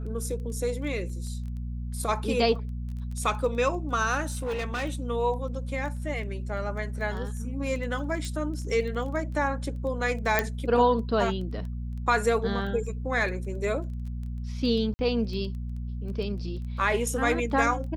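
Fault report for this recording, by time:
crackle 10 per s -36 dBFS
hum 60 Hz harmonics 4 -33 dBFS
4.25–4.84 s: clipped -26.5 dBFS
8.25 s: pop
10.39 s: pop -8 dBFS
14.94–14.99 s: dropout 50 ms

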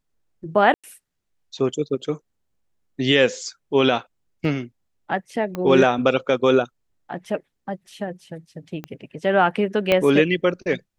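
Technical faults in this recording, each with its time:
0.74–0.84 s: dropout 96 ms
4.45 s: dropout 2.3 ms
5.55 s: pop -15 dBFS
8.84 s: pop -18 dBFS
9.92 s: pop -6 dBFS

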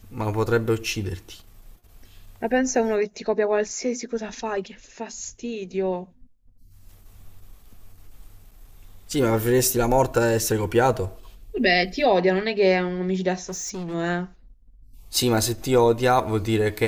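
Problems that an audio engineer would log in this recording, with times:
13.49–13.95 s: clipped -28.5 dBFS

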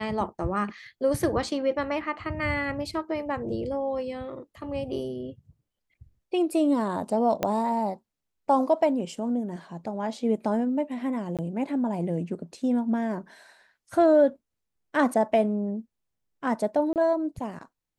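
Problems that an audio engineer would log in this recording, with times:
7.43 s: pop -11 dBFS
11.37–11.39 s: dropout 17 ms
16.93–16.96 s: dropout 28 ms

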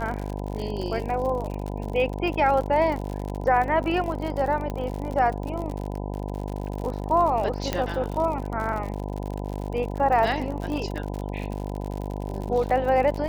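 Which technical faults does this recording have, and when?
buzz 50 Hz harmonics 20 -31 dBFS
crackle 65 per s -30 dBFS
4.70 s: pop -18 dBFS
7.73 s: pop -10 dBFS

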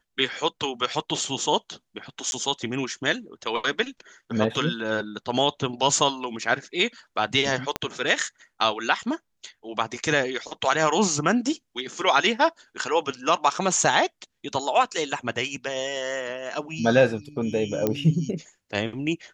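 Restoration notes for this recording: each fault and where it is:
2.31–2.32 s: dropout 11 ms
7.76 s: pop -10 dBFS
17.87 s: pop -10 dBFS

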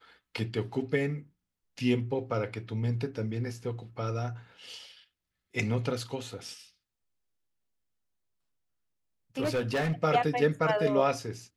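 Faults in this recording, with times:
9.41–9.93 s: clipped -25 dBFS

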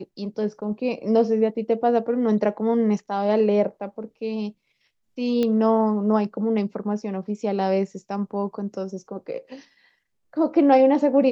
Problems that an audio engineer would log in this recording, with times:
5.43 s: pop -13 dBFS

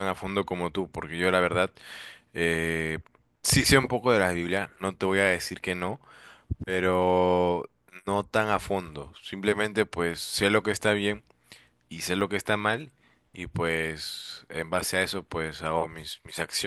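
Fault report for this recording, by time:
12.21 s: dropout 3.1 ms

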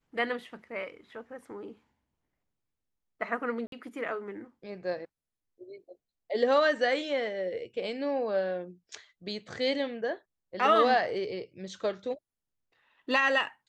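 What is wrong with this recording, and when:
3.67–3.72 s: dropout 52 ms

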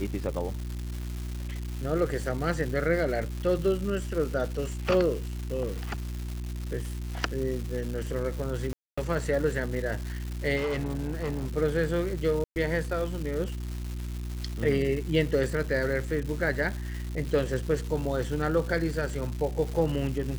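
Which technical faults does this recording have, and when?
crackle 450 per s -34 dBFS
hum 60 Hz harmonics 6 -34 dBFS
8.73–8.97 s: dropout 245 ms
10.56–11.57 s: clipped -26 dBFS
12.44–12.56 s: dropout 119 ms

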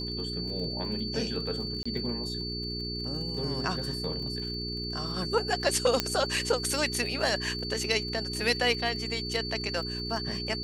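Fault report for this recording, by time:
crackle 46 per s -39 dBFS
hum 60 Hz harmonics 7 -37 dBFS
whine 4.5 kHz -35 dBFS
1.83–1.85 s: dropout 25 ms
6.00 s: pop -8 dBFS

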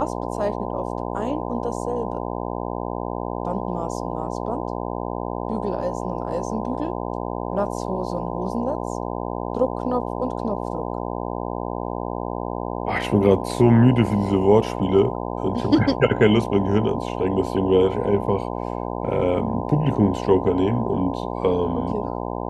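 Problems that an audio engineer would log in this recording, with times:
buzz 60 Hz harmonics 17 -28 dBFS

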